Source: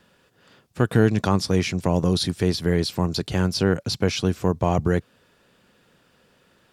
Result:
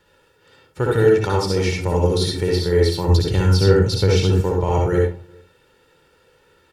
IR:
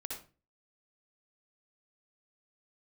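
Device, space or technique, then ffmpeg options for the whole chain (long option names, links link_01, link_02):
microphone above a desk: -filter_complex "[0:a]aecho=1:1:2.2:0.66[link_01];[1:a]atrim=start_sample=2205[link_02];[link_01][link_02]afir=irnorm=-1:irlink=0,asettb=1/sr,asplit=3[link_03][link_04][link_05];[link_03]atrim=end=3.084[link_06];[link_04]atrim=start=3.08:end=4.41,asetpts=PTS-STARTPTS,afade=type=in:duration=0.004:curve=qsin,afade=type=out:start_time=1.326:duration=0.004:curve=qsin,bass=frequency=250:gain=8,treble=frequency=4000:gain=1[link_07];[link_05]atrim=start=4.406[link_08];[link_06][link_07]acrossfade=duration=0.004:curve1=hsin:curve2=qsin[link_09];[link_09][link_08]acrossfade=duration=0.004:curve1=qsin:curve2=hsin,asplit=2[link_10][link_11];[link_11]adelay=361.5,volume=-29dB,highshelf=frequency=4000:gain=-8.13[link_12];[link_10][link_12]amix=inputs=2:normalize=0,volume=2dB"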